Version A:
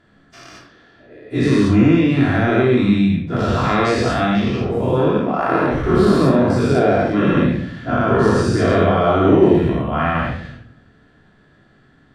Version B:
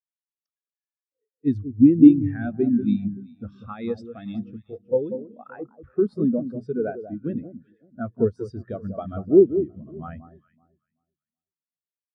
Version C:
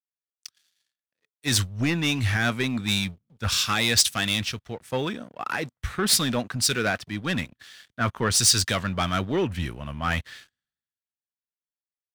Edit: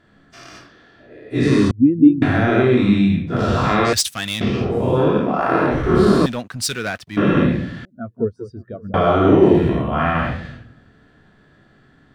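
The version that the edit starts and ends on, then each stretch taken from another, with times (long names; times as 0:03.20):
A
0:01.71–0:02.22: punch in from B
0:03.93–0:04.41: punch in from C
0:06.26–0:07.17: punch in from C
0:07.85–0:08.94: punch in from B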